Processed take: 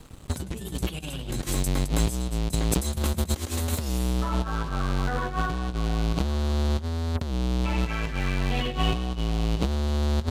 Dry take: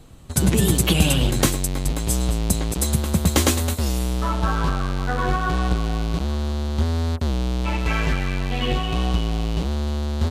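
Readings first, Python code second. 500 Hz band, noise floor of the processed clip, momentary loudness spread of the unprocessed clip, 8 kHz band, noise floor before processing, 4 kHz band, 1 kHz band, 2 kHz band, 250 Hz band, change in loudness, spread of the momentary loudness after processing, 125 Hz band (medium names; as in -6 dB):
-5.5 dB, -38 dBFS, 7 LU, -9.0 dB, -26 dBFS, -6.5 dB, -5.5 dB, -6.0 dB, -5.5 dB, -5.5 dB, 6 LU, -5.0 dB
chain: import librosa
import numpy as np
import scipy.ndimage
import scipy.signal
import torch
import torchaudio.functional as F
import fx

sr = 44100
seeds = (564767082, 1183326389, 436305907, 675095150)

y = np.sign(x) * np.maximum(np.abs(x) - 10.0 ** (-49.5 / 20.0), 0.0)
y = fx.over_compress(y, sr, threshold_db=-25.0, ratio=-0.5)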